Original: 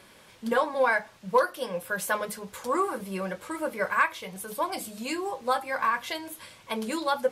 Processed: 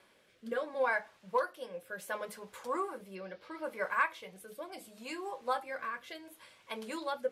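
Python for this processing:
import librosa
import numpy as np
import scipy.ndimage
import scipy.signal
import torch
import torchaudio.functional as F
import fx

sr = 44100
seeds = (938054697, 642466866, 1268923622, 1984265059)

y = fx.bass_treble(x, sr, bass_db=-9, treble_db=-5)
y = fx.rotary(y, sr, hz=0.7)
y = fx.high_shelf_res(y, sr, hz=6200.0, db=-8.5, q=3.0, at=(3.15, 3.64))
y = F.gain(torch.from_numpy(y), -6.0).numpy()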